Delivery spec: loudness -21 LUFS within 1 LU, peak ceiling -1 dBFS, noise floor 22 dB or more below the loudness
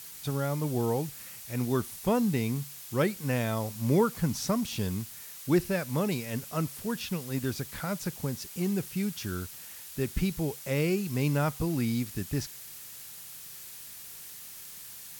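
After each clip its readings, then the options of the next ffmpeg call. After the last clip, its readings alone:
noise floor -45 dBFS; noise floor target -53 dBFS; loudness -31.0 LUFS; peak -13.0 dBFS; loudness target -21.0 LUFS
-> -af "afftdn=nr=8:nf=-45"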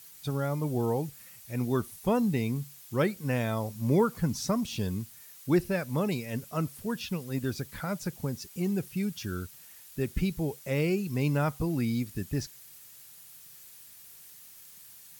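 noise floor -51 dBFS; noise floor target -53 dBFS
-> -af "afftdn=nr=6:nf=-51"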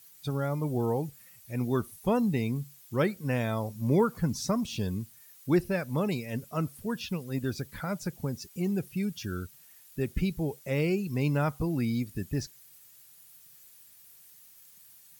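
noise floor -56 dBFS; loudness -31.0 LUFS; peak -13.5 dBFS; loudness target -21.0 LUFS
-> -af "volume=10dB"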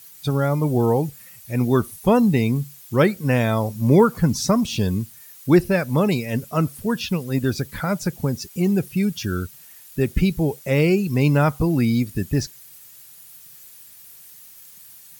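loudness -21.0 LUFS; peak -3.5 dBFS; noise floor -46 dBFS

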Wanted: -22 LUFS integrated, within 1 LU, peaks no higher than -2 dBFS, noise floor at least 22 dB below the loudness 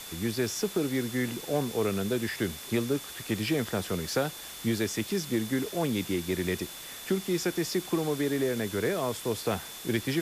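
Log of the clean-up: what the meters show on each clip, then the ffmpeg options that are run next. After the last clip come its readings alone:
steady tone 3500 Hz; tone level -47 dBFS; noise floor -43 dBFS; noise floor target -53 dBFS; loudness -30.5 LUFS; peak -15.5 dBFS; loudness target -22.0 LUFS
-> -af "bandreject=f=3.5k:w=30"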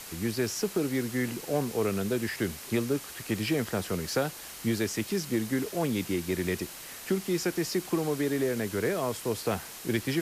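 steady tone none; noise floor -44 dBFS; noise floor target -53 dBFS
-> -af "afftdn=nr=9:nf=-44"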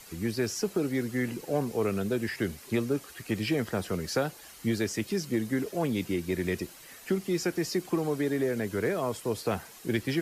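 noise floor -50 dBFS; noise floor target -53 dBFS
-> -af "afftdn=nr=6:nf=-50"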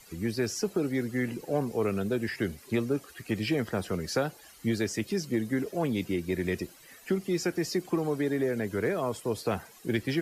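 noise floor -54 dBFS; loudness -31.0 LUFS; peak -16.0 dBFS; loudness target -22.0 LUFS
-> -af "volume=9dB"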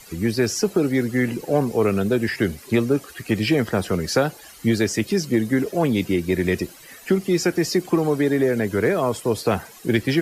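loudness -22.0 LUFS; peak -7.0 dBFS; noise floor -45 dBFS

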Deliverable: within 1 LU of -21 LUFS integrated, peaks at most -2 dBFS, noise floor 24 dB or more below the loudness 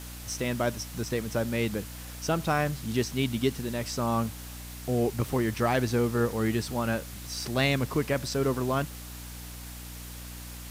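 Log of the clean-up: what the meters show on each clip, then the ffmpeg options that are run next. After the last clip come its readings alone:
hum 60 Hz; harmonics up to 300 Hz; hum level -41 dBFS; noise floor -42 dBFS; noise floor target -53 dBFS; loudness -29.0 LUFS; peak -13.0 dBFS; loudness target -21.0 LUFS
-> -af "bandreject=f=60:t=h:w=6,bandreject=f=120:t=h:w=6,bandreject=f=180:t=h:w=6,bandreject=f=240:t=h:w=6,bandreject=f=300:t=h:w=6"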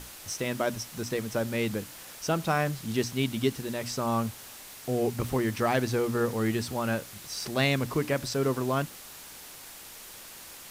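hum none; noise floor -46 dBFS; noise floor target -54 dBFS
-> -af "afftdn=nr=8:nf=-46"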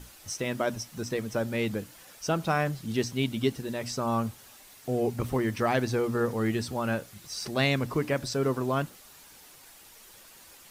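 noise floor -53 dBFS; noise floor target -54 dBFS
-> -af "afftdn=nr=6:nf=-53"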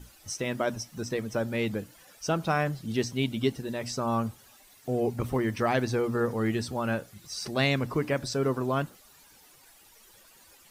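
noise floor -57 dBFS; loudness -30.0 LUFS; peak -12.5 dBFS; loudness target -21.0 LUFS
-> -af "volume=9dB"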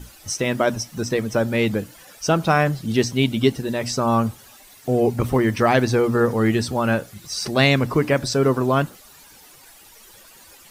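loudness -21.0 LUFS; peak -3.5 dBFS; noise floor -48 dBFS

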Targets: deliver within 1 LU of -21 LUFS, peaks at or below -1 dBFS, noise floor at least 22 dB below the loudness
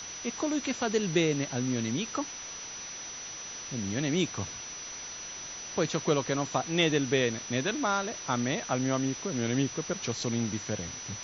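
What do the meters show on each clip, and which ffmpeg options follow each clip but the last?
steady tone 5900 Hz; tone level -40 dBFS; noise floor -41 dBFS; noise floor target -53 dBFS; loudness -31.0 LUFS; peak -12.0 dBFS; loudness target -21.0 LUFS
-> -af "bandreject=f=5.9k:w=30"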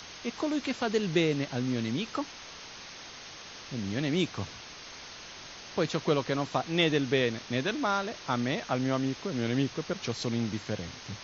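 steady tone none; noise floor -46 dBFS; noise floor target -53 dBFS
-> -af "afftdn=nr=7:nf=-46"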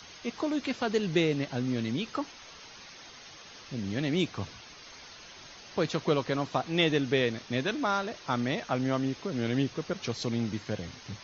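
noise floor -49 dBFS; noise floor target -53 dBFS
-> -af "afftdn=nr=6:nf=-49"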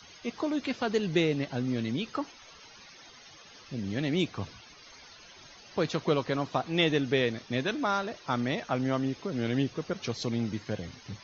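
noise floor -53 dBFS; loudness -30.5 LUFS; peak -12.0 dBFS; loudness target -21.0 LUFS
-> -af "volume=9.5dB"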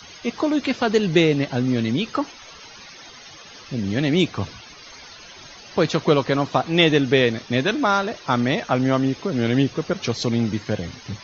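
loudness -21.0 LUFS; peak -2.5 dBFS; noise floor -43 dBFS

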